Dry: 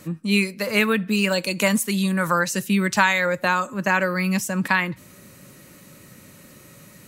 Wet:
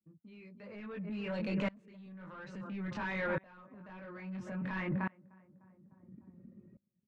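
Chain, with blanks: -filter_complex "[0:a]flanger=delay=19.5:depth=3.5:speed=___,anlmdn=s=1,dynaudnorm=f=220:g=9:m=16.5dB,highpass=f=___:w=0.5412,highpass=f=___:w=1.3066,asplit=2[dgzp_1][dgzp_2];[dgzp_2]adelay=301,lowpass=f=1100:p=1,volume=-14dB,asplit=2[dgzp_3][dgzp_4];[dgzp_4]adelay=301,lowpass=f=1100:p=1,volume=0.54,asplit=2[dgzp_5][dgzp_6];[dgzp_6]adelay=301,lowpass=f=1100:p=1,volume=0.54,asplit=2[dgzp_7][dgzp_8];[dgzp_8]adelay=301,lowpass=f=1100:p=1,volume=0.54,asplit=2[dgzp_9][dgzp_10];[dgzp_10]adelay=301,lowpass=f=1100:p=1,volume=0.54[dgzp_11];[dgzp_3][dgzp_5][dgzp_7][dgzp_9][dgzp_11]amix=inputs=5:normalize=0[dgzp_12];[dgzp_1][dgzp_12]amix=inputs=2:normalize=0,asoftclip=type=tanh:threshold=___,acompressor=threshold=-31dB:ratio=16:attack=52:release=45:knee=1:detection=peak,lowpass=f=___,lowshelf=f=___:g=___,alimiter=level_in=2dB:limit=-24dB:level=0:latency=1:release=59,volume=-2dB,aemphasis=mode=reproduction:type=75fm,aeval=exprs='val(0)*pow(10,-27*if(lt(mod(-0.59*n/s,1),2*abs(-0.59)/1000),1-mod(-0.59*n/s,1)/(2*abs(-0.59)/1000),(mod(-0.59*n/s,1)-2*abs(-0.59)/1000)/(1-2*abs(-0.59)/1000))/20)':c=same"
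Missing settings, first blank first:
1.2, 92, 92, -16.5dB, 3300, 180, 8.5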